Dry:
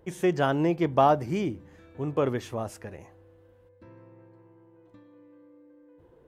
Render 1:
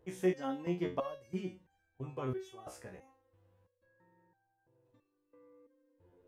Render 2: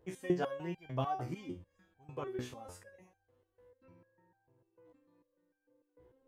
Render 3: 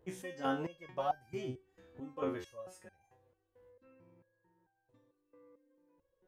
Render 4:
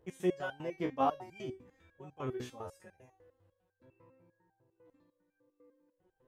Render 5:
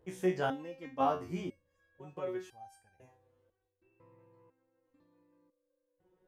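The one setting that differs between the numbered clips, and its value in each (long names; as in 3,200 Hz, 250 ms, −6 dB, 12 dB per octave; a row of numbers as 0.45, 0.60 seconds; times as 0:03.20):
step-sequenced resonator, speed: 3, 6.7, 4.5, 10, 2 Hertz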